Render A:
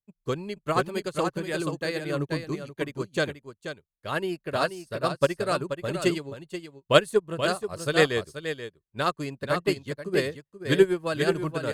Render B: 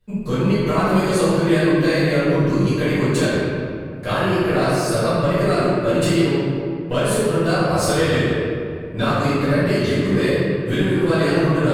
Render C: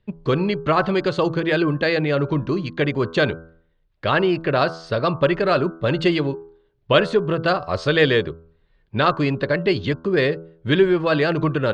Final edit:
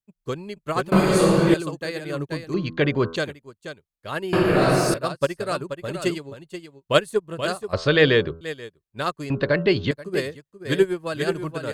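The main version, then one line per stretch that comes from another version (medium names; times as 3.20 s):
A
0.92–1.54 s: from B
2.54–3.16 s: from C
4.33–4.94 s: from B
7.73–8.41 s: from C
9.30–9.91 s: from C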